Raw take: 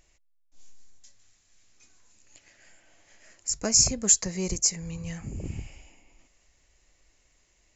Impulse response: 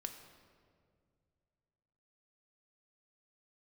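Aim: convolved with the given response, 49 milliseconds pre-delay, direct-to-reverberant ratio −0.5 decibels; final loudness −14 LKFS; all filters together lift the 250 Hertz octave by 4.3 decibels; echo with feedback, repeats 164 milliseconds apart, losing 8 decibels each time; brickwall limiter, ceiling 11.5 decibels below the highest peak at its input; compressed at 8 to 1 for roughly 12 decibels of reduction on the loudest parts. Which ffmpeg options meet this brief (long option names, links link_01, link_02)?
-filter_complex "[0:a]equalizer=frequency=250:width_type=o:gain=6,acompressor=threshold=-27dB:ratio=8,alimiter=level_in=3.5dB:limit=-24dB:level=0:latency=1,volume=-3.5dB,aecho=1:1:164|328|492|656|820:0.398|0.159|0.0637|0.0255|0.0102,asplit=2[link_01][link_02];[1:a]atrim=start_sample=2205,adelay=49[link_03];[link_02][link_03]afir=irnorm=-1:irlink=0,volume=3dB[link_04];[link_01][link_04]amix=inputs=2:normalize=0,volume=19.5dB"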